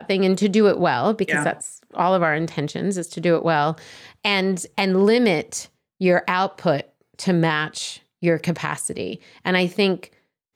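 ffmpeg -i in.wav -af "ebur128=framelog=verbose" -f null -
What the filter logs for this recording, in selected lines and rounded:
Integrated loudness:
  I:         -21.1 LUFS
  Threshold: -31.5 LUFS
Loudness range:
  LRA:         2.6 LU
  Threshold: -41.6 LUFS
  LRA low:   -23.3 LUFS
  LRA high:  -20.7 LUFS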